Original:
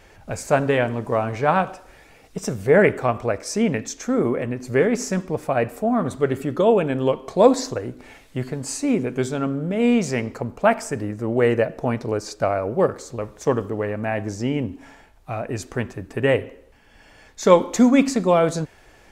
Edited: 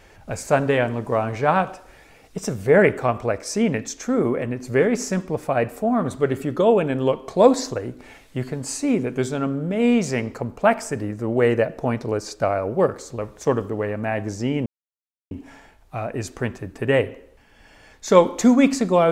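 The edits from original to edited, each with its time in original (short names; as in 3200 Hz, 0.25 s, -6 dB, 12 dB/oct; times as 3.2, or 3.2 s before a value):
14.66 insert silence 0.65 s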